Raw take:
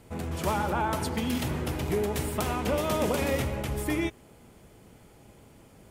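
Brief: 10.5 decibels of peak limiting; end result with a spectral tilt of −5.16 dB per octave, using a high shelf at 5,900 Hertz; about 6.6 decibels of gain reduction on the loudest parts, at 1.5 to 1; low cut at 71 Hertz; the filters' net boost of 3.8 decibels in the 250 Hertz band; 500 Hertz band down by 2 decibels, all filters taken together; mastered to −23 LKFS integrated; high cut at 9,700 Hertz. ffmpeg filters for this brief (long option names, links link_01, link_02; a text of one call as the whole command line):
ffmpeg -i in.wav -af "highpass=71,lowpass=9700,equalizer=frequency=250:width_type=o:gain=6,equalizer=frequency=500:width_type=o:gain=-4.5,highshelf=frequency=5900:gain=6,acompressor=threshold=-41dB:ratio=1.5,volume=16.5dB,alimiter=limit=-14.5dB:level=0:latency=1" out.wav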